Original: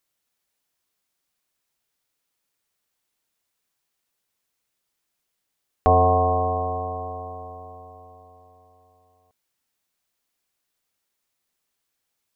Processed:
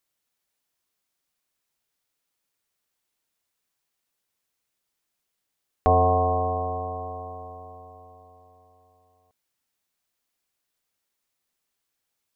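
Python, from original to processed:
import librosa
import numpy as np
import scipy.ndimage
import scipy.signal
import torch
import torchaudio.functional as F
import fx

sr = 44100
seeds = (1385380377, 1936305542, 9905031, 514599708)

y = fx.dynamic_eq(x, sr, hz=1900.0, q=1.8, threshold_db=-42.0, ratio=4.0, max_db=-5)
y = y * 10.0 ** (-2.0 / 20.0)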